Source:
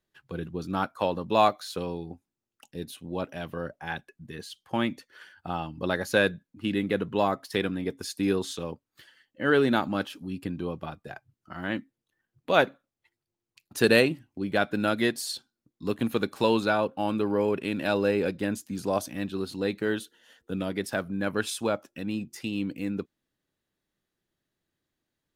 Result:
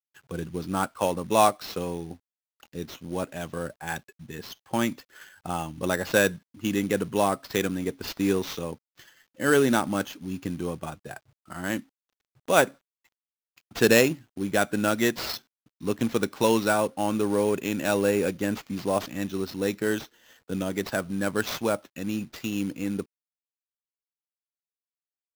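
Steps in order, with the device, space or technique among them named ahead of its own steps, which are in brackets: early companding sampler (sample-rate reducer 9.5 kHz, jitter 0%; companded quantiser 6-bit); trim +1.5 dB

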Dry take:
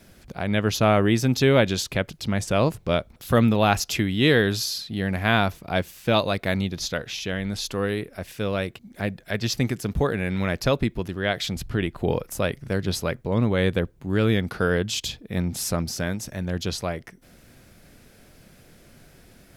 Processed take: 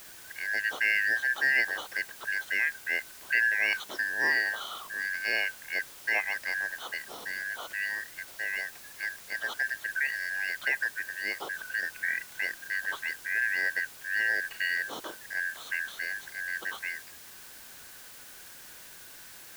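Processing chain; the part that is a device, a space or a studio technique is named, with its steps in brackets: split-band scrambled radio (four frequency bands reordered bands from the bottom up 3142; band-pass 330–2900 Hz; white noise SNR 16 dB); trim -7 dB

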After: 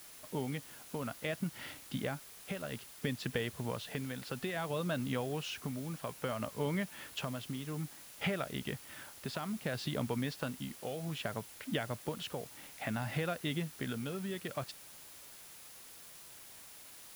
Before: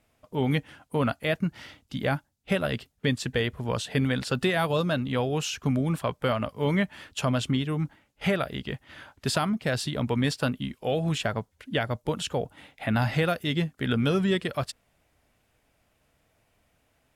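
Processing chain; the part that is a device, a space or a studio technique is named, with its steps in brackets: medium wave at night (band-pass 100–4400 Hz; compression 4:1, threshold -33 dBFS, peak gain reduction 11.5 dB; tremolo 0.6 Hz, depth 48%; whistle 10 kHz -60 dBFS; white noise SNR 14 dB)

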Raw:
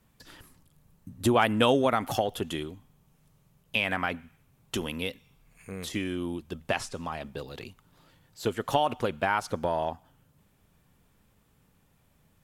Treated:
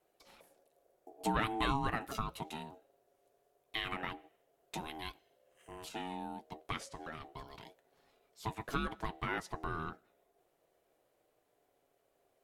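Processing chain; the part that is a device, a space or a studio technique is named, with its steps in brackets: alien voice (ring modulator 550 Hz; flange 0.2 Hz, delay 5.4 ms, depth 2.3 ms, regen -62%); trim -3.5 dB

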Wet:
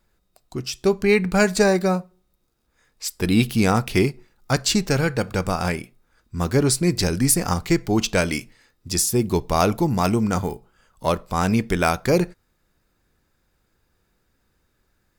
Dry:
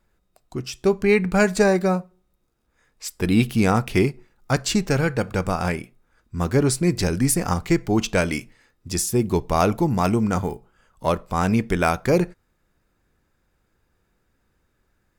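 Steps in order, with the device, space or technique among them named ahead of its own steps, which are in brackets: presence and air boost (peaking EQ 4.4 kHz +4.5 dB 0.87 oct; treble shelf 9.4 kHz +6.5 dB)

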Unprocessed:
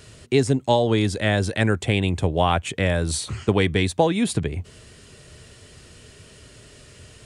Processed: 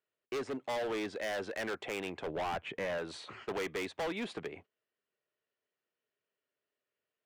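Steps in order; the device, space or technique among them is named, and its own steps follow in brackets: walkie-talkie (band-pass 450–2400 Hz; hard clipper -27.5 dBFS, distortion -4 dB; gate -46 dBFS, range -32 dB); 2.27–2.98 s: tone controls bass +8 dB, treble -8 dB; trim -5.5 dB

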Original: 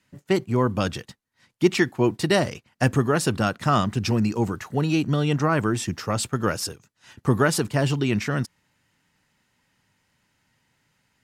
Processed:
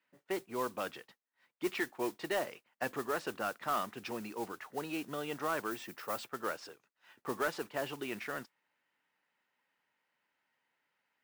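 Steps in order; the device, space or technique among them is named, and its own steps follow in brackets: carbon microphone (band-pass 450–2800 Hz; saturation -14.5 dBFS, distortion -18 dB; modulation noise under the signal 15 dB); 5.71–6.26 s: treble shelf 11 kHz +11.5 dB; trim -9 dB

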